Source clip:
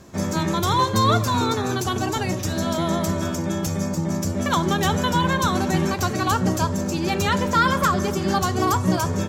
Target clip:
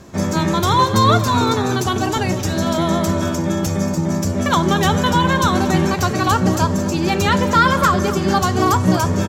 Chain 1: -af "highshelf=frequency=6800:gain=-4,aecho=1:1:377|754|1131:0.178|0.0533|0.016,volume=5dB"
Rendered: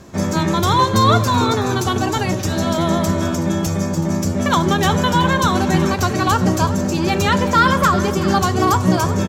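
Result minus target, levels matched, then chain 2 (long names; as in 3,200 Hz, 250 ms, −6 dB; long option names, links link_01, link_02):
echo 145 ms late
-af "highshelf=frequency=6800:gain=-4,aecho=1:1:232|464|696:0.178|0.0533|0.016,volume=5dB"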